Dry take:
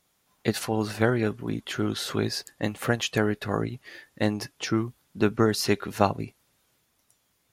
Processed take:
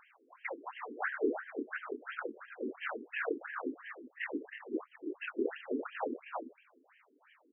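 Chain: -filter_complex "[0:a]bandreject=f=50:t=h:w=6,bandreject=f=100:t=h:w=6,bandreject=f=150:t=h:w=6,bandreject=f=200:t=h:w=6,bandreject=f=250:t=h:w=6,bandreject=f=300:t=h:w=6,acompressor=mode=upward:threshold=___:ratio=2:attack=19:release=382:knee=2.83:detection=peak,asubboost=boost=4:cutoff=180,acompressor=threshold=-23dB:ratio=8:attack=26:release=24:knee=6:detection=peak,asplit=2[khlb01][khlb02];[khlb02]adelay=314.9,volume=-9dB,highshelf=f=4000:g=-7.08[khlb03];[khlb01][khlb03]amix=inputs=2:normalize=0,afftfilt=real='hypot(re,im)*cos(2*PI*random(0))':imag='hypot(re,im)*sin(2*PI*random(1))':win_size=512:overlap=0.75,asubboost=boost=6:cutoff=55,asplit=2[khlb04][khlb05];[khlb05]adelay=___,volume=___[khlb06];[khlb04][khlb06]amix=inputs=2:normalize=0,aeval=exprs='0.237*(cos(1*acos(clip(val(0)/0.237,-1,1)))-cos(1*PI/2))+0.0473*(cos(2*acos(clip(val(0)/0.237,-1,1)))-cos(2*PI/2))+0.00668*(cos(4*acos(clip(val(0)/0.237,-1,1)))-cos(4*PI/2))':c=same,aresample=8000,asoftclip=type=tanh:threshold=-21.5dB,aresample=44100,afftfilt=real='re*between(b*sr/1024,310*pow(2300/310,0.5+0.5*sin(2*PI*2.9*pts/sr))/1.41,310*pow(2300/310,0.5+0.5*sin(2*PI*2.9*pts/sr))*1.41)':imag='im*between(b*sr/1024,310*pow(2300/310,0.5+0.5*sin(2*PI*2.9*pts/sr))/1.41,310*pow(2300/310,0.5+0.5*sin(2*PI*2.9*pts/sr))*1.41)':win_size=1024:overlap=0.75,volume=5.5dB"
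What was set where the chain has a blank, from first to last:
-36dB, 27, -3.5dB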